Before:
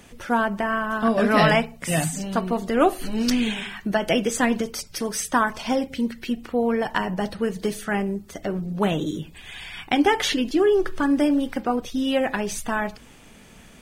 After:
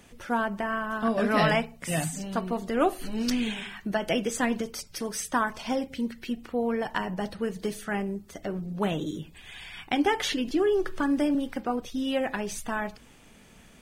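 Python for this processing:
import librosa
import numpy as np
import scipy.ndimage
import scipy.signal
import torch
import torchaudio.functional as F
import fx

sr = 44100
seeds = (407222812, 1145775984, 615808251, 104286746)

y = fx.band_squash(x, sr, depth_pct=40, at=(10.47, 11.35))
y = y * 10.0 ** (-5.5 / 20.0)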